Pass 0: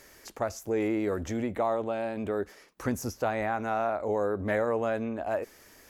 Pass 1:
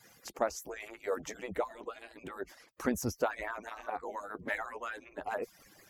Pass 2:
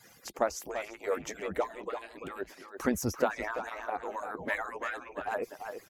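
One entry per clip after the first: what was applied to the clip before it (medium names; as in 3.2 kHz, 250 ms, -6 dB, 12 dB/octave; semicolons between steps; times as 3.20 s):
harmonic-percussive separation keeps percussive
speakerphone echo 340 ms, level -7 dB; trim +2.5 dB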